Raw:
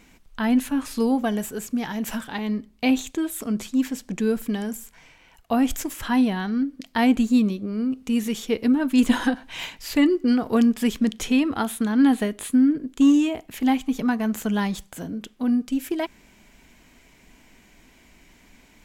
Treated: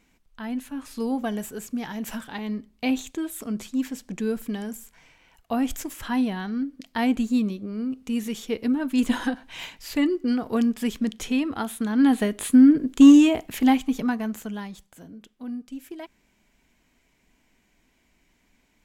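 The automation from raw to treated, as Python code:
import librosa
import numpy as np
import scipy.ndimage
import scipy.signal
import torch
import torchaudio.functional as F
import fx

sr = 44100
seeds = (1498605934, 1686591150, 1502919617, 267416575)

y = fx.gain(x, sr, db=fx.line((0.67, -10.5), (1.21, -4.0), (11.74, -4.0), (12.71, 5.0), (13.41, 5.0), (14.2, -3.5), (14.68, -12.0)))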